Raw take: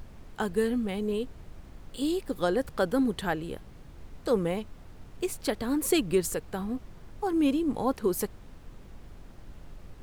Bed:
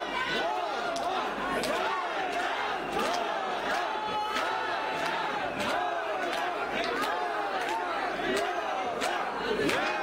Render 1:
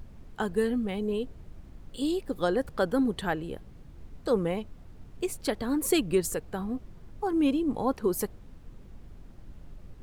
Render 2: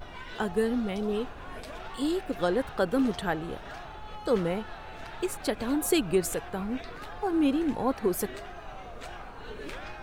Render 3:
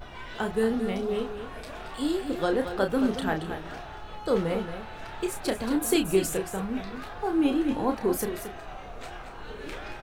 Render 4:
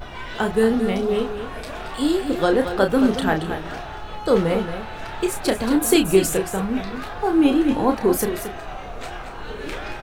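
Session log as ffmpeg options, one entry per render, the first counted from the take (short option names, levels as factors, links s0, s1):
-af "afftdn=nr=6:nf=-49"
-filter_complex "[1:a]volume=0.224[s0];[0:a][s0]amix=inputs=2:normalize=0"
-filter_complex "[0:a]asplit=2[s0][s1];[s1]adelay=31,volume=0.473[s2];[s0][s2]amix=inputs=2:normalize=0,aecho=1:1:226:0.335"
-af "volume=2.37"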